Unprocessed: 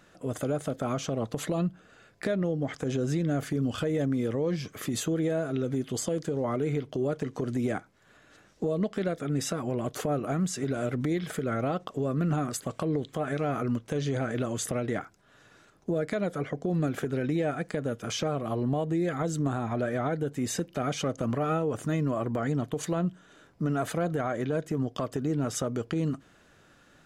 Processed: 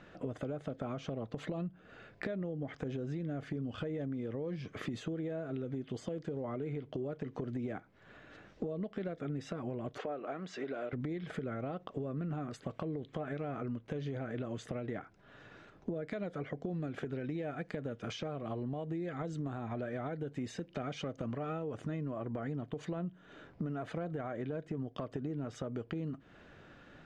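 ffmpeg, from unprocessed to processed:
-filter_complex "[0:a]asettb=1/sr,asplit=3[s0][s1][s2];[s0]atrim=end=9.984[s3];[s1]atrim=start=9.98:end=10.93,asetpts=PTS-STARTPTS,afade=t=in:d=0.004:c=qsin,afade=t=out:st=0.946:d=0.004:c=qsin,highpass=420,lowpass=4900[s4];[s2]atrim=start=10.926[s5];[s3][s4]acrossfade=d=0.004:c1=hsin:c2=qsin[s6];[s6][s5]acrossfade=d=0.004:c1=qsin:c2=hsin,asettb=1/sr,asplit=3[s7][s8][s9];[s7]atrim=end=16.054[s10];[s8]atrim=start=16.05:end=21.82,asetpts=PTS-STARTPTS,afade=t=in:d=0.004:c=qsin,afade=t=out:st=5.766:d=0.004:c=qsin,equalizer=f=7900:w=0.32:g=5[s11];[s9]atrim=start=21.816[s12];[s10][s11]acrossfade=d=0.004:c1=hsin:c2=qsin[s13];[s13][s12]acrossfade=d=0.004:c1=qsin:c2=hsin,acompressor=threshold=0.01:ratio=6,lowpass=2900,equalizer=f=1200:w=1.4:g=-3,volume=1.58"

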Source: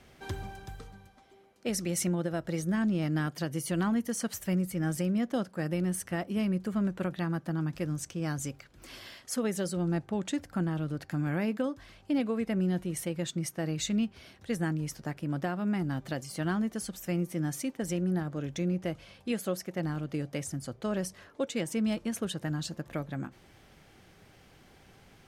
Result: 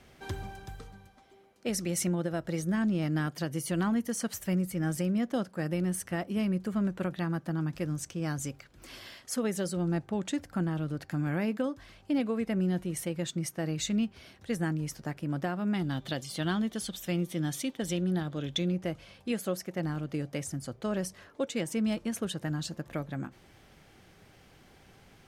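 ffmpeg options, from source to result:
-filter_complex "[0:a]asettb=1/sr,asplit=3[s0][s1][s2];[s0]atrim=end=15.744[s3];[s1]atrim=start=15.74:end=18.72,asetpts=PTS-STARTPTS,afade=t=in:d=0.004:c=qsin,afade=t=out:st=2.976:d=0.004:c=qsin,equalizer=f=3500:t=o:w=0.45:g=14.5[s4];[s2]atrim=start=18.716[s5];[s3][s4]acrossfade=d=0.004:c1=hsin:c2=qsin[s6];[s6][s5]acrossfade=d=0.004:c1=qsin:c2=hsin"

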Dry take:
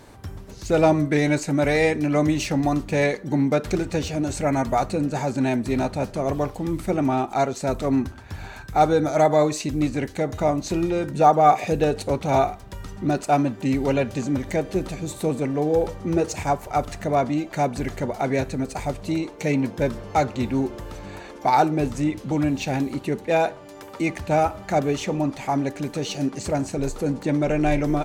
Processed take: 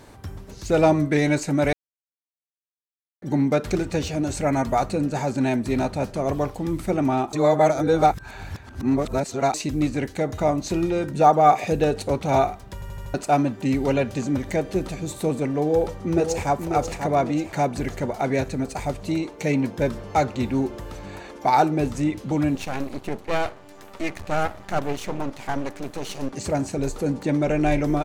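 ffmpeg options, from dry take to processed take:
-filter_complex "[0:a]asplit=2[s0][s1];[s1]afade=t=in:st=15.63:d=0.01,afade=t=out:st=16.52:d=0.01,aecho=0:1:540|1080|1620|2160|2700:0.473151|0.189261|0.0757042|0.0302817|0.0121127[s2];[s0][s2]amix=inputs=2:normalize=0,asettb=1/sr,asplit=3[s3][s4][s5];[s3]atrim=end=22.554[s6];[s4]atrim=start=22.55:end=26.33,asetpts=PTS-STARTPTS,afade=t=in:d=0.004:c=qsin,afade=t=out:st=3.776:d=0.004:c=qsin,aeval=exprs='max(val(0),0)':c=same[s7];[s5]atrim=start=26.326[s8];[s6][s7]acrossfade=d=0.004:c1=hsin:c2=qsin[s9];[s9][s8]acrossfade=d=0.004:c1=qsin:c2=hsin,asplit=10[s10][s11][s12][s13][s14][s15][s16][s17][s18][s19];[s10]atrim=end=1.73,asetpts=PTS-STARTPTS,afade=t=out:st=1.726:d=0.004:c=hsin[s20];[s11]atrim=start=1.73:end=3.22,asetpts=PTS-STARTPTS,volume=0[s21];[s12]atrim=start=3.22:end=7.332,asetpts=PTS-STARTPTS,afade=t=in:d=0.004:c=hsin[s22];[s13]atrim=start=7.328:end=9.542,asetpts=PTS-STARTPTS,areverse[s23];[s14]atrim=start=9.538:end=12.822[s24];[s15]atrim=start=12.738:end=12.822[s25];[s16]atrim=start=12.738:end=12.822[s26];[s17]atrim=start=12.738:end=12.822[s27];[s18]atrim=start=12.738:end=12.822[s28];[s19]atrim=start=13.138[s29];[s20][s21][s22]concat=n=3:v=0:a=1[s30];[s30][s23]acrossfade=d=0.004:c1=hsin:c2=hsin[s31];[s31][s24]acrossfade=d=0.004:c1=hsin:c2=hsin[s32];[s32][s25]acrossfade=d=0.004:c1=hsin:c2=hsin[s33];[s33][s26]acrossfade=d=0.004:c1=hsin:c2=hsin[s34];[s34][s27]acrossfade=d=0.004:c1=hsin:c2=hsin[s35];[s35][s28]acrossfade=d=0.004:c1=hsin:c2=hsin[s36];[s36][s29]acrossfade=d=0.004:c1=hsin:c2=hsin"

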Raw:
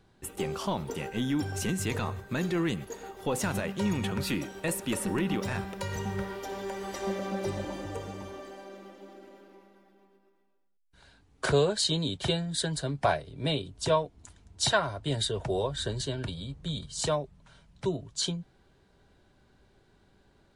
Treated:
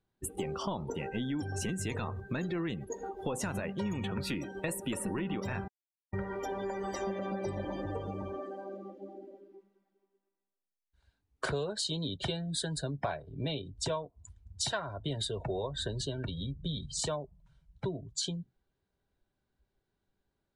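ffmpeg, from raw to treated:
-filter_complex "[0:a]asplit=3[s0][s1][s2];[s0]atrim=end=5.68,asetpts=PTS-STARTPTS,afade=t=out:st=5.676:d=0.004:c=hsin[s3];[s1]atrim=start=5.68:end=6.13,asetpts=PTS-STARTPTS,volume=0[s4];[s2]atrim=start=6.13,asetpts=PTS-STARTPTS,afade=t=in:d=0.004:c=hsin[s5];[s3][s4][s5]concat=n=3:v=0:a=1,afftdn=nr=24:nf=-42,acompressor=threshold=0.0126:ratio=4,volume=1.68"

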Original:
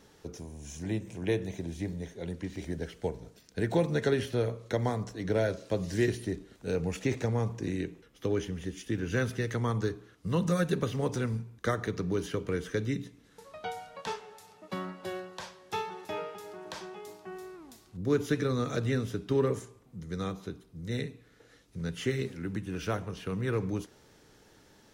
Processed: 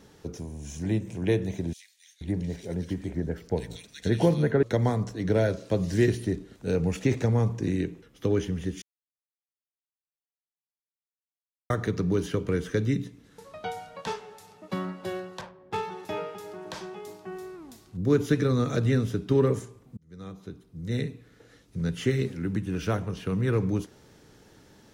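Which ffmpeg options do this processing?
-filter_complex "[0:a]asettb=1/sr,asplit=3[s0][s1][s2];[s0]atrim=end=1.734[s3];[s1]atrim=start=1.73:end=4.63,asetpts=PTS-STARTPTS,afade=t=in:d=0.004:c=qsin,afade=t=out:st=2.896:d=0.004:c=qsin,acrossover=split=2400[s4][s5];[s4]adelay=480[s6];[s6][s5]amix=inputs=2:normalize=0,atrim=end_sample=127890[s7];[s2]atrim=start=4.626[s8];[s3][s7]acrossfade=d=0.004:c1=hsin:c2=qsin[s9];[s9][s8]acrossfade=d=0.004:c1=qsin:c2=hsin,asettb=1/sr,asplit=3[s10][s11][s12];[s10]atrim=end=15.414[s13];[s11]atrim=start=15.41:end=15.83,asetpts=PTS-STARTPTS,afade=t=in:d=0.004:c=qsin,afade=t=out:st=0.416:d=0.004:c=qsin,adynamicsmooth=sensitivity=8:basefreq=1000[s14];[s12]atrim=start=15.826[s15];[s13][s14]acrossfade=d=0.004:c1=hsin:c2=qsin[s16];[s16][s15]acrossfade=d=0.004:c1=qsin:c2=hsin,asplit=4[s17][s18][s19][s20];[s17]atrim=end=8.82,asetpts=PTS-STARTPTS,afade=t=out:st=8.816:d=0.004:c=hsin[s21];[s18]atrim=start=8.82:end=11.7,asetpts=PTS-STARTPTS,volume=0[s22];[s19]atrim=start=11.7:end=19.97,asetpts=PTS-STARTPTS,afade=t=in:d=0.004:c=hsin,afade=t=out:st=8.266:d=0.004:c=hsin[s23];[s20]atrim=start=19.97,asetpts=PTS-STARTPTS,afade=t=in:d=1.14[s24];[s21][s22][s23][s24]concat=n=4:v=0:a=1,equalizer=f=140:w=0.44:g=5,volume=1.26"

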